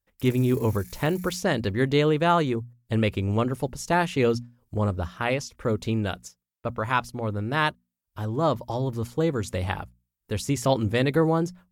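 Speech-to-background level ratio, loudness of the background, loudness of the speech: 20.0 dB, -46.0 LUFS, -26.0 LUFS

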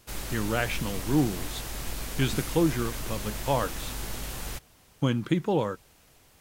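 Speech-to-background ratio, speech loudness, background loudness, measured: 7.0 dB, -29.0 LUFS, -36.0 LUFS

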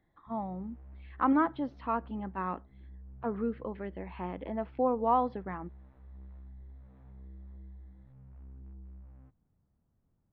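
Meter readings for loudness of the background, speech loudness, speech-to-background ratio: -53.0 LUFS, -33.5 LUFS, 19.5 dB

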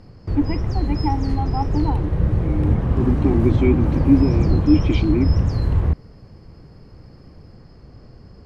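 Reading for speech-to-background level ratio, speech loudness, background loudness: -1.5 dB, -22.5 LUFS, -21.0 LUFS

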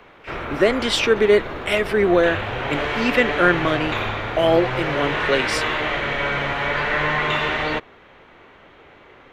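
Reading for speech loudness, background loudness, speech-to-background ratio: -20.5 LUFS, -23.5 LUFS, 3.0 dB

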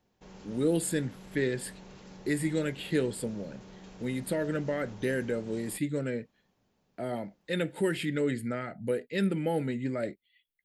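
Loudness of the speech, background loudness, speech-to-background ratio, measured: -32.0 LUFS, -50.0 LUFS, 18.0 dB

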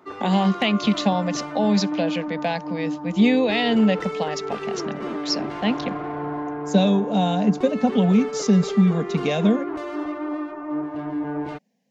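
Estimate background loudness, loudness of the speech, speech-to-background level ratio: -30.0 LUFS, -22.0 LUFS, 8.0 dB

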